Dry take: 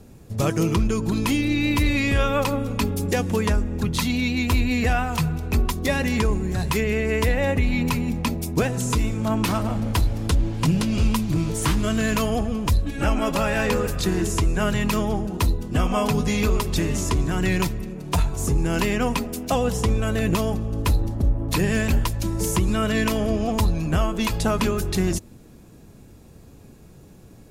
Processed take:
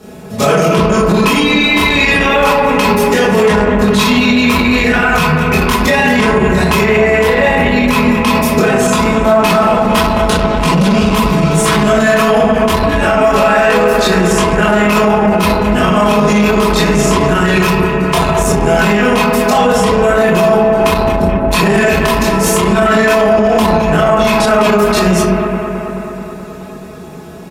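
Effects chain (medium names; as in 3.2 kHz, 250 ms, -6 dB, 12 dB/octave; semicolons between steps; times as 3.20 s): comb 4.7 ms, depth 83%; reverberation RT60 0.75 s, pre-delay 17 ms, DRR -8 dB; saturation -3.5 dBFS, distortion -17 dB; high-pass 500 Hz 6 dB/octave; treble shelf 3.4 kHz -7 dB; bucket-brigade echo 215 ms, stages 4096, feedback 71%, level -11 dB; loudness maximiser +13.5 dB; trim -1 dB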